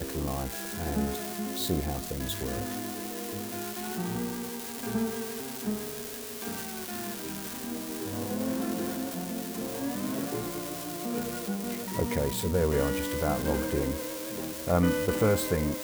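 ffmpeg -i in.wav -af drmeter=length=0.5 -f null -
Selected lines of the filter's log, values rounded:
Channel 1: DR: 11.0
Overall DR: 11.0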